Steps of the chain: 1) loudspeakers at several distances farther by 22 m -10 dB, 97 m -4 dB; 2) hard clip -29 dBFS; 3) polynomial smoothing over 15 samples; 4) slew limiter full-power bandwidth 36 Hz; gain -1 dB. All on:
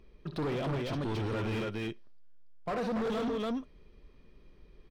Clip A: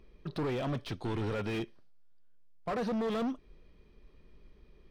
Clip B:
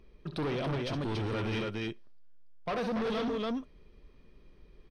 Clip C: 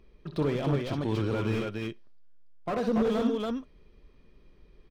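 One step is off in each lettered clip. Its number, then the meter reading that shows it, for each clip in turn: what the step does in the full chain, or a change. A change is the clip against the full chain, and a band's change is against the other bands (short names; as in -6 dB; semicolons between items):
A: 1, momentary loudness spread change +1 LU; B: 4, distortion -15 dB; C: 2, distortion -7 dB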